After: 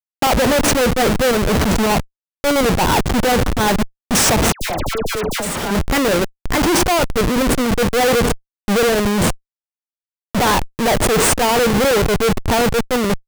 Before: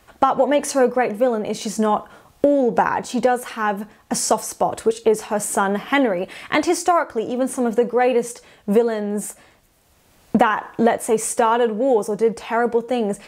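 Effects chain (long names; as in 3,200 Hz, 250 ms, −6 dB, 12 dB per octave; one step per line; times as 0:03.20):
comparator with hysteresis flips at −25.5 dBFS
0:04.52–0:05.71: all-pass dispersion lows, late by 93 ms, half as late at 1,500 Hz
brickwall limiter −21 dBFS, peak gain reduction 13 dB
level +8 dB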